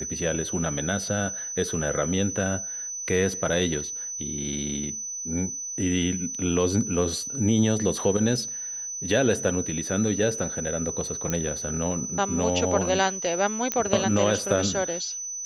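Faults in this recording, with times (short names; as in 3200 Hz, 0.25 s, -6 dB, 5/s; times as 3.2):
tone 6000 Hz -31 dBFS
11.3 pop -12 dBFS
13.72 pop -8 dBFS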